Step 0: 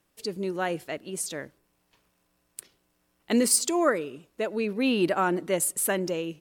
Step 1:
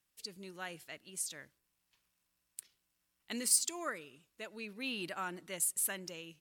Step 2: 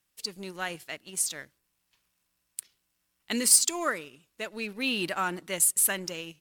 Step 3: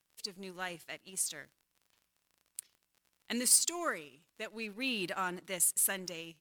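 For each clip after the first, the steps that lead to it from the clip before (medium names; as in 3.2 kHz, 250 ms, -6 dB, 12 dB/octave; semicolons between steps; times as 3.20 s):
amplifier tone stack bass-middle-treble 5-5-5
waveshaping leveller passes 1; trim +6.5 dB
crackle 42 per s -44 dBFS; trim -6 dB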